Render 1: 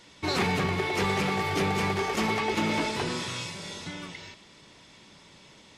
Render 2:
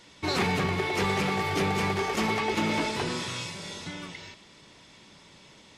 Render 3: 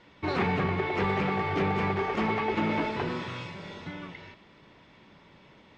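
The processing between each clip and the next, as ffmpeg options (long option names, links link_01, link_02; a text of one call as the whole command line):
ffmpeg -i in.wav -af anull out.wav
ffmpeg -i in.wav -af "lowpass=2300" out.wav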